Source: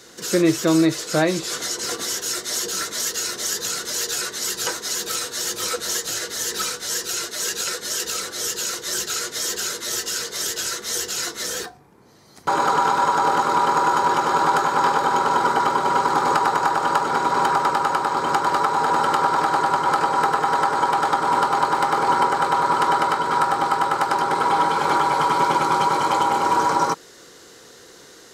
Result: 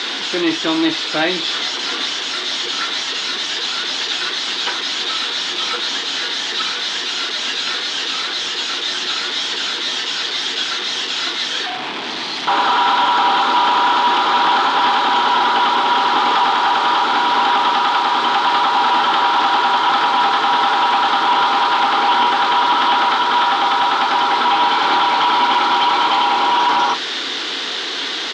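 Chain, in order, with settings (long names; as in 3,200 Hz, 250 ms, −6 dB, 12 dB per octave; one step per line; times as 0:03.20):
linear delta modulator 64 kbit/s, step −25.5 dBFS
spectral tilt +3 dB per octave
hard clipping −20 dBFS, distortion −8 dB
loudspeaker in its box 230–4,000 Hz, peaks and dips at 270 Hz +8 dB, 520 Hz −7 dB, 850 Hz +3 dB, 3,400 Hz +7 dB
double-tracking delay 33 ms −11 dB
level +7 dB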